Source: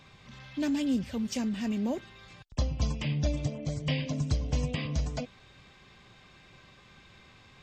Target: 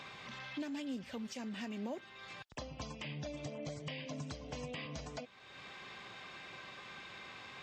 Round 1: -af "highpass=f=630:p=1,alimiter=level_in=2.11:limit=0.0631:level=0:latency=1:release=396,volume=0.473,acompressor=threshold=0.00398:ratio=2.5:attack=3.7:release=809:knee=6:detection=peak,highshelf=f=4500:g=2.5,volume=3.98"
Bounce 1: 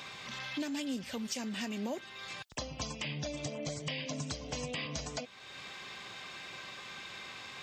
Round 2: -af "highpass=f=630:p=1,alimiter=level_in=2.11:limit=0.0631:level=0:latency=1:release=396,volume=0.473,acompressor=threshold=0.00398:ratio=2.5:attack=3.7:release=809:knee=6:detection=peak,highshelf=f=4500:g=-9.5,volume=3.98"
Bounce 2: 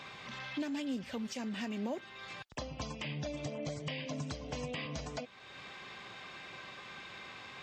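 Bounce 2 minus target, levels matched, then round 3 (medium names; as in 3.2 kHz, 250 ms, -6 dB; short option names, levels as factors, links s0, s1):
compression: peak gain reduction -4 dB
-af "highpass=f=630:p=1,alimiter=level_in=2.11:limit=0.0631:level=0:latency=1:release=396,volume=0.473,acompressor=threshold=0.00188:ratio=2.5:attack=3.7:release=809:knee=6:detection=peak,highshelf=f=4500:g=-9.5,volume=3.98"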